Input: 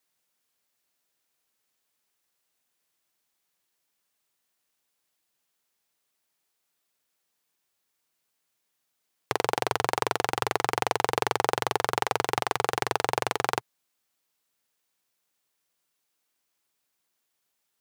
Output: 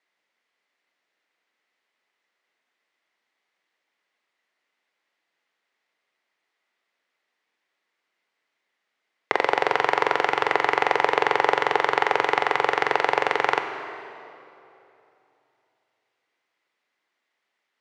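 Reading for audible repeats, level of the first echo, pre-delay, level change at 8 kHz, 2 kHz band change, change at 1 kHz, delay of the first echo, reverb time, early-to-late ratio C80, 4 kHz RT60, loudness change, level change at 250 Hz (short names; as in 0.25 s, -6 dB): none, none, 19 ms, -9.0 dB, +8.5 dB, +5.5 dB, none, 2.9 s, 8.5 dB, 2.2 s, +5.5 dB, +2.5 dB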